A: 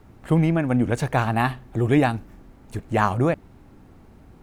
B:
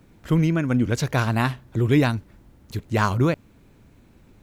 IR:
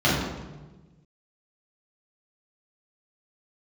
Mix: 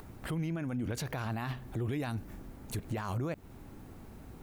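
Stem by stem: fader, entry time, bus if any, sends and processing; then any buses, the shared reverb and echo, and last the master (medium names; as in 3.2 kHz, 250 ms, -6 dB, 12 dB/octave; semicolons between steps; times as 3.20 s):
-1.0 dB, 0.00 s, no send, compression, threshold -28 dBFS, peak gain reduction 14 dB
-9.5 dB, 0.00 s, no send, none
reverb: none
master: treble shelf 8.7 kHz +11.5 dB; upward compressor, threshold -47 dBFS; peak limiter -27.5 dBFS, peak gain reduction 15.5 dB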